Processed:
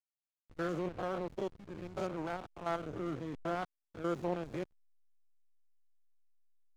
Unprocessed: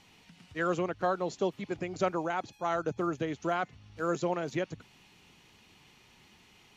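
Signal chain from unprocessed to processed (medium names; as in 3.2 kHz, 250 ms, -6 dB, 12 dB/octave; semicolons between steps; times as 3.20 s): spectrogram pixelated in time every 100 ms; hysteresis with a dead band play -33 dBFS; trim -2.5 dB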